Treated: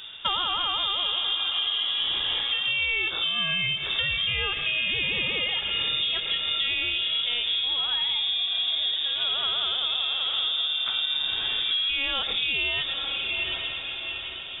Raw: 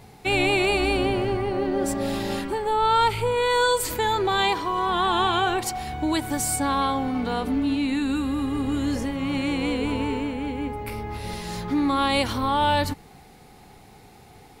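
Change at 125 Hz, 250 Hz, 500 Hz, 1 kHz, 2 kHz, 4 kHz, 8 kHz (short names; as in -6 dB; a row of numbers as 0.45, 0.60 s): -13.0 dB, -23.5 dB, -17.5 dB, -13.5 dB, +1.5 dB, +10.0 dB, under -40 dB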